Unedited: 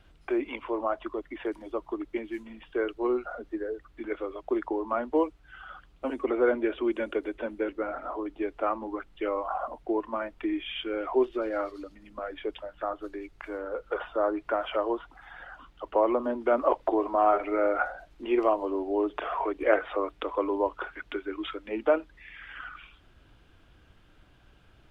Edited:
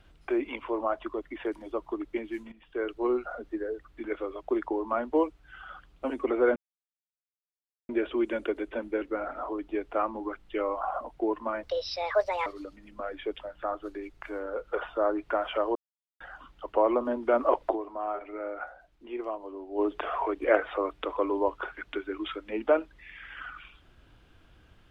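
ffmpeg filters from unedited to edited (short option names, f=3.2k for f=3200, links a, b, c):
-filter_complex "[0:a]asplit=9[a][b][c][d][e][f][g][h][i];[a]atrim=end=2.52,asetpts=PTS-STARTPTS,afade=t=out:st=2.516:d=0.004:c=hsin:silence=0.211349[j];[b]atrim=start=2.52:end=6.56,asetpts=PTS-STARTPTS,afade=t=in:d=0.45:silence=0.211349,afade=t=out:st=4.036:d=0.004:c=hsin,apad=pad_dur=1.33[k];[c]atrim=start=6.56:end=10.304,asetpts=PTS-STARTPTS,afade=t=in:d=0.004:c=hsin[l];[d]atrim=start=10.3:end=11.65,asetpts=PTS-STARTPTS,asetrate=71442,aresample=44100[m];[e]atrim=start=11.646:end=14.94,asetpts=PTS-STARTPTS,afade=t=out:st=3.29:d=0.004:c=hsin[n];[f]atrim=start=14.94:end=15.39,asetpts=PTS-STARTPTS,volume=0[o];[g]atrim=start=15.39:end=17.2,asetpts=PTS-STARTPTS,afade=t=in:d=0.004:c=hsin,afade=t=out:st=1.52:d=0.29:c=exp:silence=0.298538[p];[h]atrim=start=17.2:end=18.69,asetpts=PTS-STARTPTS,volume=-10.5dB[q];[i]atrim=start=18.69,asetpts=PTS-STARTPTS,afade=t=in:d=0.29:c=exp:silence=0.298538[r];[j][k][l]concat=n=3:v=0:a=1[s];[s][m]acrossfade=d=0.004:c1=hsin:c2=hsin[t];[n][o][p][q][r]concat=n=5:v=0:a=1[u];[t][u]acrossfade=d=0.004:c1=hsin:c2=hsin"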